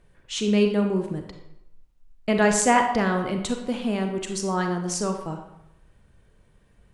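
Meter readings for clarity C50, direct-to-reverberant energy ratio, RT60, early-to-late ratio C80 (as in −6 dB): 6.5 dB, 4.0 dB, 0.85 s, 9.0 dB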